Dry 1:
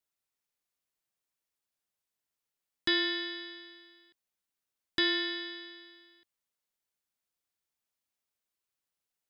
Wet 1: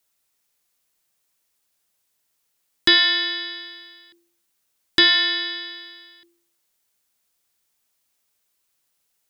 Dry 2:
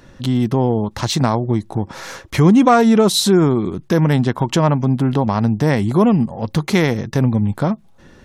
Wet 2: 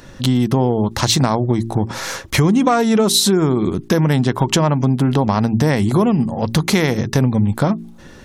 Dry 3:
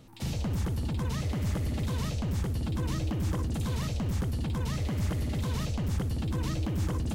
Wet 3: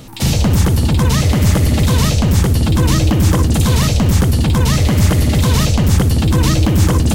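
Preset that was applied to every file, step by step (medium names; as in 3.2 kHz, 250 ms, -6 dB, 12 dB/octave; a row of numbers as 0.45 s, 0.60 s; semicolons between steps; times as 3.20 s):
treble shelf 4.1 kHz +5.5 dB; de-hum 57.1 Hz, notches 7; compression, threshold -16 dBFS; peak normalisation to -2 dBFS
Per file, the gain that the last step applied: +12.0 dB, +4.5 dB, +18.5 dB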